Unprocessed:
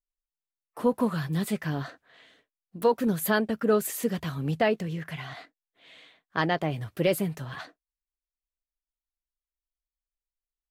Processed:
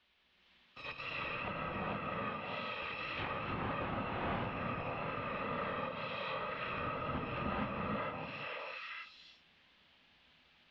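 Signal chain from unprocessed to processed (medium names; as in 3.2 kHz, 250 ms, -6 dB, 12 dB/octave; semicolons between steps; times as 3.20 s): bit-reversed sample order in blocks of 256 samples; peaking EQ 2.1 kHz -10.5 dB 1.1 oct; reverse; compression 10:1, threshold -38 dBFS, peak gain reduction 20.5 dB; reverse; sine folder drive 18 dB, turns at -26.5 dBFS; vibrato 2 Hz 55 cents; added noise violet -53 dBFS; on a send: repeats whose band climbs or falls 308 ms, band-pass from 310 Hz, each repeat 1.4 oct, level -0.5 dB; on the sum: gated-style reverb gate 490 ms rising, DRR -6 dB; mistuned SSB -140 Hz 180–3500 Hz; low-pass that closes with the level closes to 1.4 kHz, closed at -33.5 dBFS; trim +1 dB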